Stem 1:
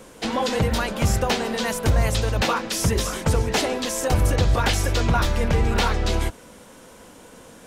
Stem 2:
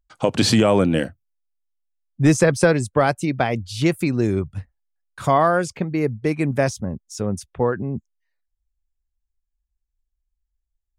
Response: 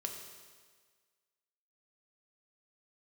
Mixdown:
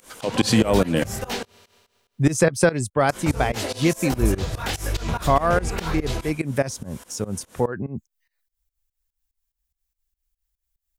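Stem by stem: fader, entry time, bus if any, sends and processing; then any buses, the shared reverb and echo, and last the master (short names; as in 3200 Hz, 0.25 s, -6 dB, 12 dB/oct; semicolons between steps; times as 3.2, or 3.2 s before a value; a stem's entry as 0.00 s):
-2.0 dB, 0.00 s, muted 1.43–3.09, send -17 dB, detuned doubles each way 49 cents
-1.0 dB, 0.00 s, no send, dry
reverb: on, RT60 1.6 s, pre-delay 3 ms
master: high shelf 11000 Hz +10.5 dB; pump 145 bpm, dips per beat 2, -21 dB, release 0.158 s; mismatched tape noise reduction encoder only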